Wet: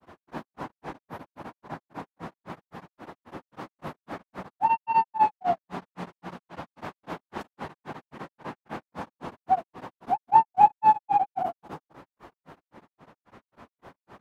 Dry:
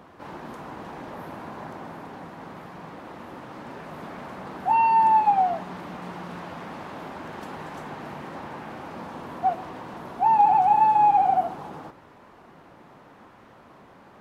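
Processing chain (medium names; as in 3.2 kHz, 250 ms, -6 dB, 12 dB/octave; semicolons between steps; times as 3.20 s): granulator 182 ms, grains 3.7 per s, pitch spread up and down by 0 st; tremolo of two beating tones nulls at 8 Hz; trim +5.5 dB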